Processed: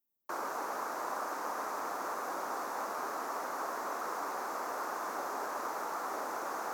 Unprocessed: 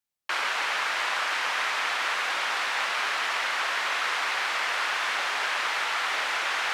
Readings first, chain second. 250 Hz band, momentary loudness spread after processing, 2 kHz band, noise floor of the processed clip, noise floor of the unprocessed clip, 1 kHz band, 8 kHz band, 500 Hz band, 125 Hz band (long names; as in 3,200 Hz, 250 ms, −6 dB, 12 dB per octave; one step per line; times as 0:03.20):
+5.0 dB, 0 LU, −18.0 dB, −40 dBFS, −29 dBFS, −6.0 dB, −9.5 dB, −1.0 dB, can't be measured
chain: drawn EQ curve 130 Hz 0 dB, 280 Hz +8 dB, 530 Hz +1 dB, 1,200 Hz −5 dB, 2,000 Hz −22 dB, 3,100 Hz −30 dB, 6,300 Hz −7 dB, 8,900 Hz −9 dB, 15,000 Hz +9 dB
level −1.5 dB